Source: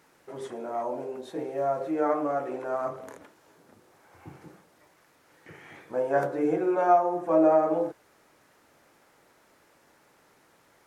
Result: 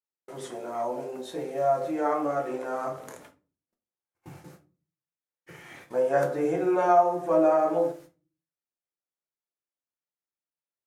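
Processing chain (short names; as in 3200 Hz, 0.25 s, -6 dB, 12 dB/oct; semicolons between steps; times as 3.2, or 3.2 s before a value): gate -50 dBFS, range -44 dB; high shelf 3100 Hz +9 dB; shoebox room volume 180 m³, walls furnished, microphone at 0.91 m; gain -1.5 dB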